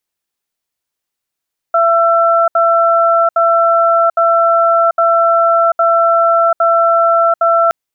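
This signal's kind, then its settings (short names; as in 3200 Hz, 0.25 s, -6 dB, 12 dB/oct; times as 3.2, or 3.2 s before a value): cadence 672 Hz, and 1340 Hz, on 0.74 s, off 0.07 s, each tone -10.5 dBFS 5.97 s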